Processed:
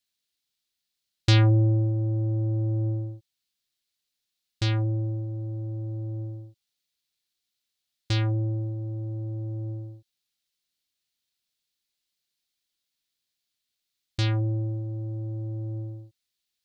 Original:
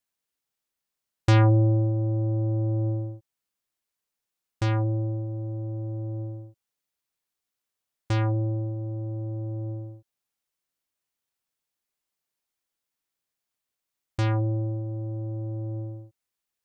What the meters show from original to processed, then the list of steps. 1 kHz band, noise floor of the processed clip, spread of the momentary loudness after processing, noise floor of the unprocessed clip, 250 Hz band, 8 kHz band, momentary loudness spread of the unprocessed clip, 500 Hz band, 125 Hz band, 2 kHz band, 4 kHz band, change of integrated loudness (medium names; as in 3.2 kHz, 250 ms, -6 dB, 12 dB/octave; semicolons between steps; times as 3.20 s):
-6.5 dB, -83 dBFS, 15 LU, under -85 dBFS, -2.0 dB, no reading, 15 LU, -4.0 dB, 0.0 dB, +0.5 dB, +8.5 dB, -0.5 dB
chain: ten-band graphic EQ 500 Hz -4 dB, 1 kHz -8 dB, 4 kHz +11 dB